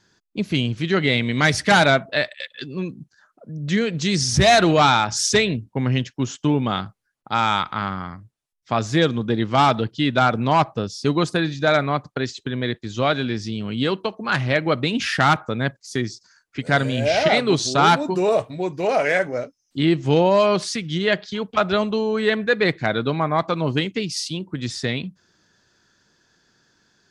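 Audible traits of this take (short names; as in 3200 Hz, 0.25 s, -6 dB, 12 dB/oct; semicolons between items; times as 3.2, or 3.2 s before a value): noise floor -70 dBFS; spectral tilt -4.5 dB/oct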